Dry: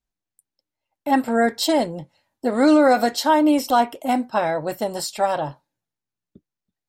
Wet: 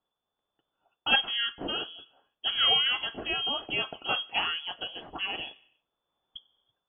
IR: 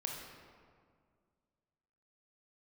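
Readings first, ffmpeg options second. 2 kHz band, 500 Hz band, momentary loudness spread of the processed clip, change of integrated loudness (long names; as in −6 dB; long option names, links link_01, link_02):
−2.5 dB, −21.0 dB, 14 LU, −8.0 dB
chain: -filter_complex "[0:a]aexciter=amount=8.8:drive=8.7:freq=2300,dynaudnorm=framelen=220:gausssize=5:maxgain=8dB,lowpass=frequency=3000:width_type=q:width=0.5098,lowpass=frequency=3000:width_type=q:width=0.6013,lowpass=frequency=3000:width_type=q:width=0.9,lowpass=frequency=3000:width_type=q:width=2.563,afreqshift=-3500,asplit=2[link_01][link_02];[link_02]tiltshelf=frequency=1500:gain=-9[link_03];[1:a]atrim=start_sample=2205,afade=type=out:start_time=0.39:duration=0.01,atrim=end_sample=17640[link_04];[link_03][link_04]afir=irnorm=-1:irlink=0,volume=-19.5dB[link_05];[link_01][link_05]amix=inputs=2:normalize=0,volume=-5dB"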